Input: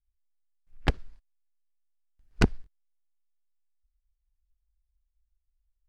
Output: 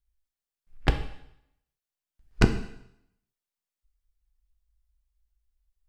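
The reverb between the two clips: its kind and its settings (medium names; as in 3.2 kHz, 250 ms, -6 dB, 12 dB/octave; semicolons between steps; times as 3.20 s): plate-style reverb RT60 0.75 s, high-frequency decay 1×, DRR 6.5 dB; trim +1.5 dB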